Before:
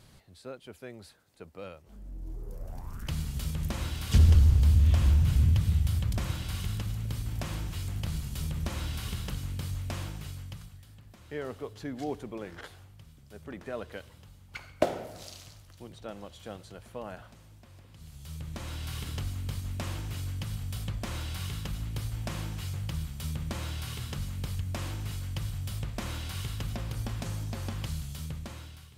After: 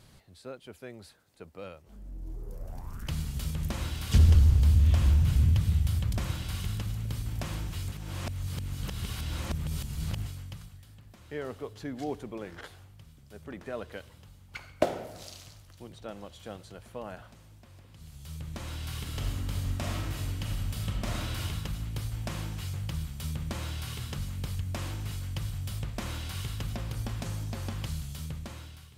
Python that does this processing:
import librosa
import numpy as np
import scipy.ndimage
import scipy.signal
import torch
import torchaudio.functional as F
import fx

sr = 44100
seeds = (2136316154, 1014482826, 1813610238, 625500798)

y = fx.reverb_throw(x, sr, start_s=19.06, length_s=2.35, rt60_s=1.2, drr_db=-0.5)
y = fx.edit(y, sr, fx.reverse_span(start_s=7.92, length_s=2.34), tone=tone)